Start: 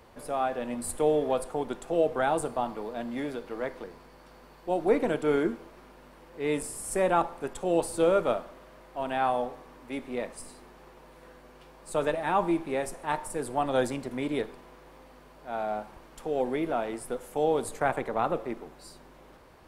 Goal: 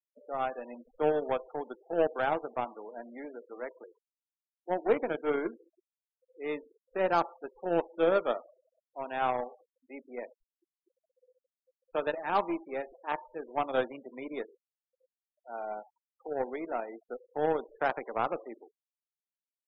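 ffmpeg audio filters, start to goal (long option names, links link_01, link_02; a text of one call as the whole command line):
ffmpeg -i in.wav -filter_complex "[0:a]acrossover=split=270 4000:gain=0.158 1 0.0631[link_01][link_02][link_03];[link_01][link_02][link_03]amix=inputs=3:normalize=0,aeval=exprs='0.251*(cos(1*acos(clip(val(0)/0.251,-1,1)))-cos(1*PI/2))+0.01*(cos(4*acos(clip(val(0)/0.251,-1,1)))-cos(4*PI/2))+0.00158*(cos(6*acos(clip(val(0)/0.251,-1,1)))-cos(6*PI/2))+0.0178*(cos(7*acos(clip(val(0)/0.251,-1,1)))-cos(7*PI/2))':channel_layout=same,afftfilt=real='re*gte(hypot(re,im),0.00891)':imag='im*gte(hypot(re,im),0.00891)':win_size=1024:overlap=0.75,volume=-1.5dB" out.wav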